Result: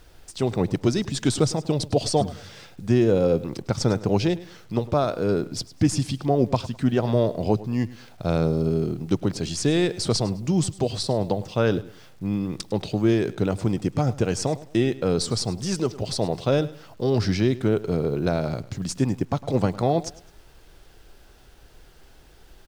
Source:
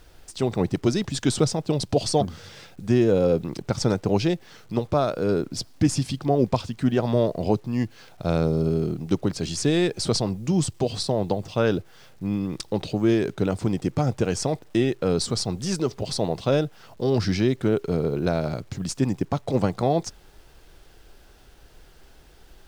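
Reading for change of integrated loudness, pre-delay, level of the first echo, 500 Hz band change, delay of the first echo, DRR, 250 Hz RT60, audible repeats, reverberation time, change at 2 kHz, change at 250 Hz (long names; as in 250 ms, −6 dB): +0.5 dB, no reverb audible, −18.0 dB, 0.0 dB, 104 ms, no reverb audible, no reverb audible, 2, no reverb audible, 0.0 dB, 0.0 dB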